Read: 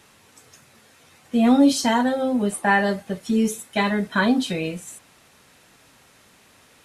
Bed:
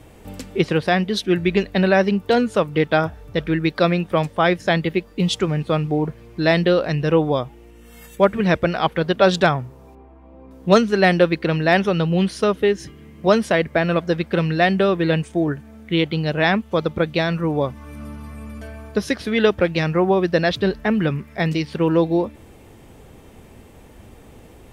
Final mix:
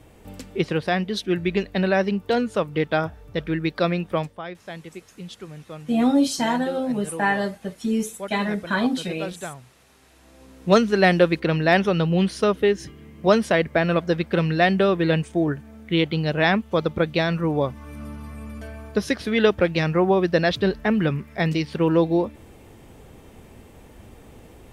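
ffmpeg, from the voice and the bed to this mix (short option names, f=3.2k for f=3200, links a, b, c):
-filter_complex "[0:a]adelay=4550,volume=-3dB[a];[1:a]volume=12dB,afade=t=out:st=4.15:d=0.27:silence=0.211349,afade=t=in:st=9.97:d=0.88:silence=0.149624[b];[a][b]amix=inputs=2:normalize=0"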